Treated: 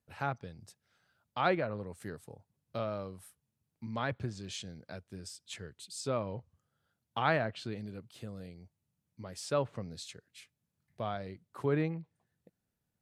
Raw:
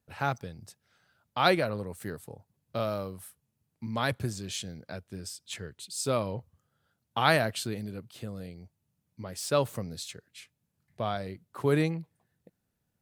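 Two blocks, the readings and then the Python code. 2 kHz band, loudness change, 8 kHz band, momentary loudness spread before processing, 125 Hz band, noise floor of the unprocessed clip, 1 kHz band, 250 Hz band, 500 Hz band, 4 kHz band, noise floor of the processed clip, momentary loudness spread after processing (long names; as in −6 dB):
−6.0 dB, −5.5 dB, −8.5 dB, 19 LU, −5.0 dB, −80 dBFS, −5.0 dB, −5.0 dB, −5.0 dB, −9.0 dB, −85 dBFS, 19 LU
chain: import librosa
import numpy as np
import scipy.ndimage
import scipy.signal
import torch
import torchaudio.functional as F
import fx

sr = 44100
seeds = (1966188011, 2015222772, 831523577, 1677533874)

y = fx.env_lowpass_down(x, sr, base_hz=2400.0, full_db=-25.0)
y = F.gain(torch.from_numpy(y), -5.0).numpy()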